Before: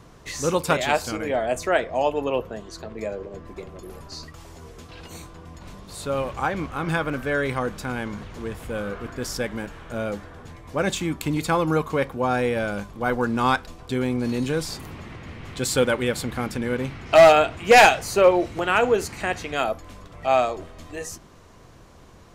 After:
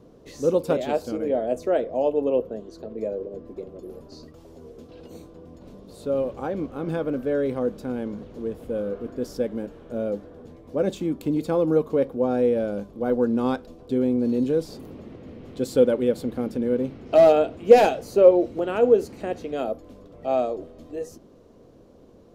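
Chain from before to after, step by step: graphic EQ 250/500/1000/2000/8000 Hz +10/+12/-4/-7/-6 dB; gain -9 dB

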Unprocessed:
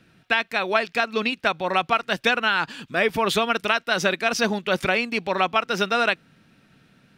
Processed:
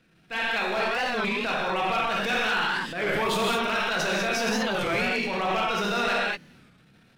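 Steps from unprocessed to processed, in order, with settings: half-wave gain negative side -3 dB; non-linear reverb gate 0.25 s flat, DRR -4 dB; hard clip -12.5 dBFS, distortion -19 dB; transient shaper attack -9 dB, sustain +6 dB; record warp 33 1/3 rpm, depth 160 cents; gain -6 dB

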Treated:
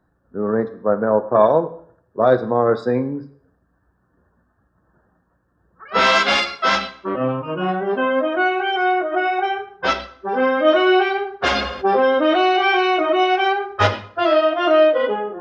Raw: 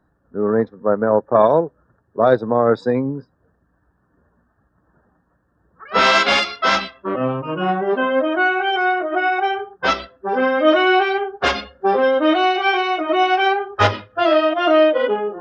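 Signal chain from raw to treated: plate-style reverb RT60 0.58 s, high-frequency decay 0.85×, DRR 9.5 dB; 11.51–13.12 fast leveller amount 50%; gain -1.5 dB

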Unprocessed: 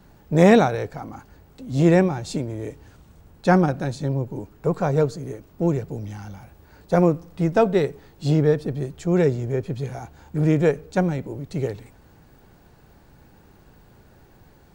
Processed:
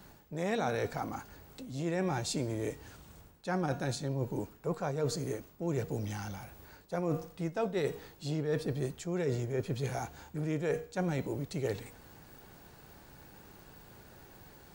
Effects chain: tilt +1.5 dB/oct; de-hum 238.1 Hz, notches 40; reverse; compressor 12:1, threshold -29 dBFS, peak gain reduction 19 dB; reverse

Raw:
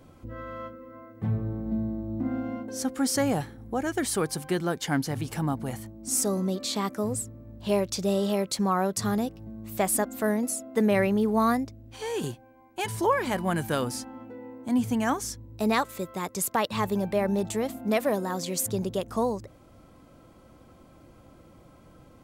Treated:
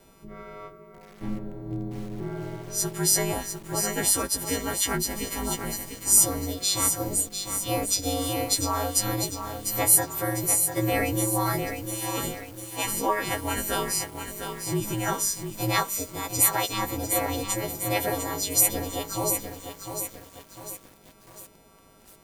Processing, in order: frequency quantiser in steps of 3 st; ring modulator 100 Hz; lo-fi delay 0.699 s, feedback 55%, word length 7-bit, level -7 dB

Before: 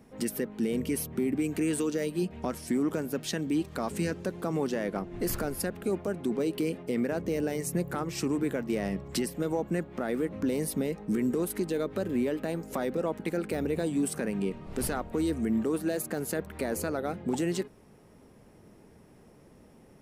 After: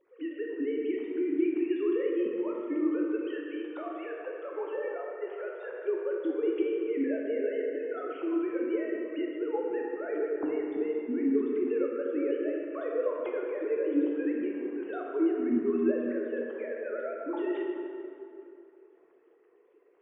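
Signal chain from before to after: sine-wave speech; 3.38–5.68 steep high-pass 410 Hz 36 dB/oct; plate-style reverb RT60 2.7 s, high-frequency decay 0.6×, DRR -2 dB; gain -4.5 dB

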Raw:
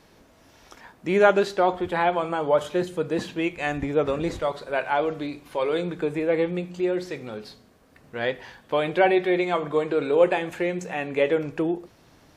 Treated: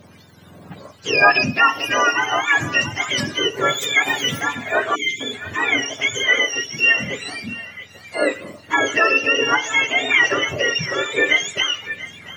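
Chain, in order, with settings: spectrum mirrored in octaves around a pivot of 1000 Hz; in parallel at +0.5 dB: limiter -18 dBFS, peak gain reduction 10.5 dB; 8.16–8.78 on the sum: requantised 12-bit, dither none; on a send: narrowing echo 0.687 s, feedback 44%, band-pass 1700 Hz, level -13 dB; 4.95–5.21 on the sum: spectral delete 450–2000 Hz; LFO bell 1.7 Hz 590–6700 Hz +7 dB; gain +1.5 dB

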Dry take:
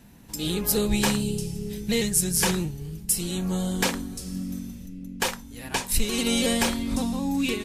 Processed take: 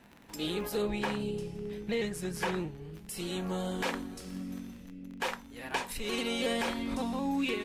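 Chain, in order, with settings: crackle 33/s -33 dBFS; 0.82–2.94 high shelf 3900 Hz -10 dB; limiter -18.5 dBFS, peak gain reduction 9 dB; tone controls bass -12 dB, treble -13 dB

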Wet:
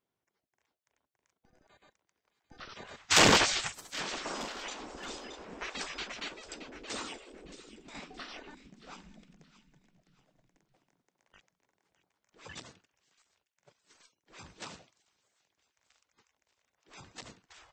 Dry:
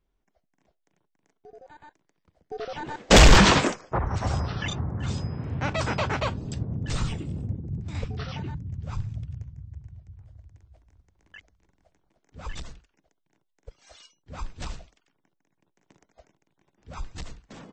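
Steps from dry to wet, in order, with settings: thin delay 0.622 s, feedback 33%, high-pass 1900 Hz, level -13 dB; spectral gate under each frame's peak -15 dB weak; gain -3 dB

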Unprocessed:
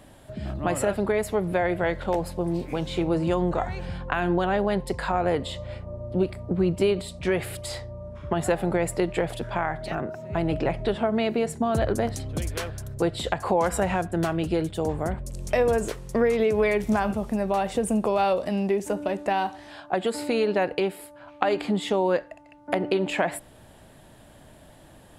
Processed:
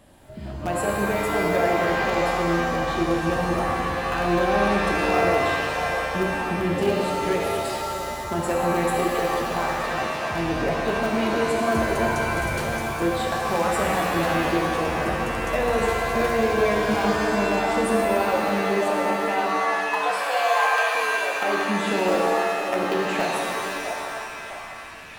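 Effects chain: delay with a stepping band-pass 0.658 s, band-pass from 620 Hz, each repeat 0.7 oct, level -5 dB; in parallel at -11 dB: wrapped overs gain 13 dB; 19.7–20.95 on the sum: frequency shift +270 Hz; shimmer reverb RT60 2.3 s, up +7 st, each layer -2 dB, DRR -1 dB; gain -6 dB

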